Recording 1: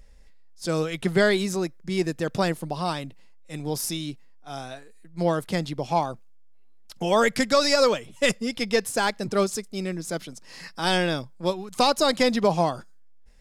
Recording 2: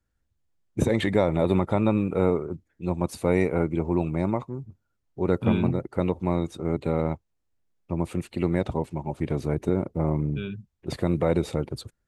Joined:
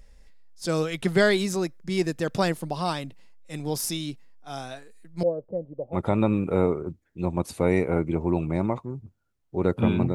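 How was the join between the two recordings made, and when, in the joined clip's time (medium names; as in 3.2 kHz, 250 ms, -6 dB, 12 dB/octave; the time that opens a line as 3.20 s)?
recording 1
5.23–5.98 s: four-pole ladder low-pass 580 Hz, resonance 75%
5.95 s: go over to recording 2 from 1.59 s, crossfade 0.06 s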